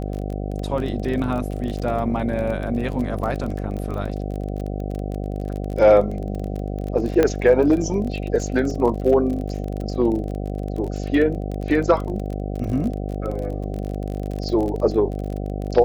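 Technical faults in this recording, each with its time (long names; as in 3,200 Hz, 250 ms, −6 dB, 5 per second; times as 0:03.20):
mains buzz 50 Hz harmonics 15 −27 dBFS
surface crackle 31 per second −27 dBFS
0:07.23: click −6 dBFS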